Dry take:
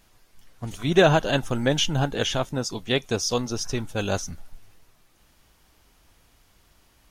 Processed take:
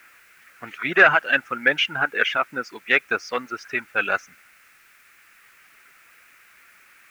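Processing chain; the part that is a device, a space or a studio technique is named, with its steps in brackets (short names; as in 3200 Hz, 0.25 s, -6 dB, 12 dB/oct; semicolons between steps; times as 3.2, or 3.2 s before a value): reverb removal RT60 1.9 s; tape answering machine (BPF 330–2800 Hz; soft clip -12.5 dBFS, distortion -17 dB; wow and flutter 29 cents; white noise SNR 28 dB); band shelf 1800 Hz +16 dB 1.3 oct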